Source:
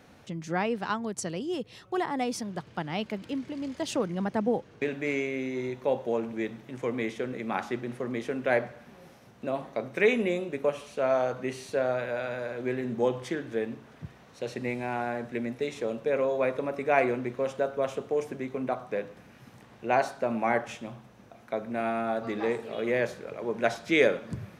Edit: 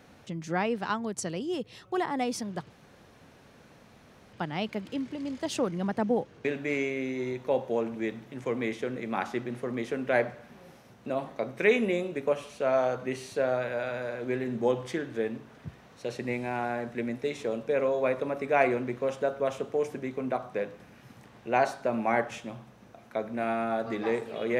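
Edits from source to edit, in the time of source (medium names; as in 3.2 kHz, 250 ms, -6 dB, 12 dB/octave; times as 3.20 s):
2.70 s: insert room tone 1.63 s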